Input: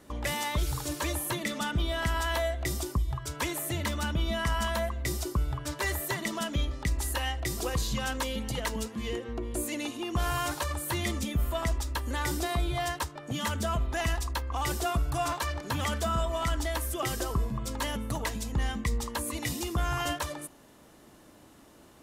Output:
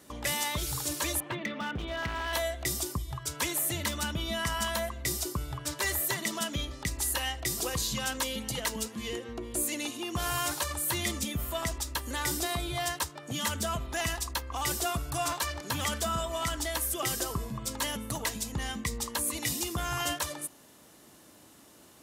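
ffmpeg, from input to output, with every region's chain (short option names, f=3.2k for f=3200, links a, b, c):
-filter_complex "[0:a]asettb=1/sr,asplit=3[a][b][c];[a]atrim=end=1.204[d];[b]atrim=start=1.2:end=2.33,asetpts=PTS-STARTPTS,afade=t=in:d=0.004:c=qsin,afade=t=out:st=1.126:d=0.004:c=qsin,lowpass=f=2.8k:w=0.5412,lowpass=f=2.8k:w=1.3066,volume=26dB,asoftclip=hard,volume=-26dB[e];[c]atrim=start=2.326[f];[d][e]acrossfade=d=0.004:c1=hsin:c2=qsin[g];[g][f]acrossfade=d=0.004:c1=qsin:c2=hsin,highpass=75,highshelf=f=3.1k:g=9,volume=-2.5dB"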